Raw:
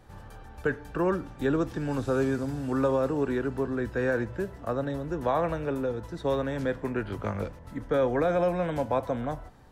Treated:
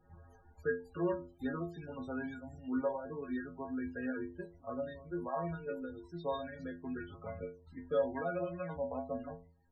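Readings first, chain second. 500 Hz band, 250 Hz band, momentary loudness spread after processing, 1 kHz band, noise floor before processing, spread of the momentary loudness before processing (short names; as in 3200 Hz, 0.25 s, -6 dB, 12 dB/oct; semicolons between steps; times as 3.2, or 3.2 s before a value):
-10.5 dB, -9.5 dB, 10 LU, -11.0 dB, -47 dBFS, 8 LU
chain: reverb removal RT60 1.2 s; metallic resonator 82 Hz, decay 0.48 s, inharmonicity 0.008; loudest bins only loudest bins 32; gain +2 dB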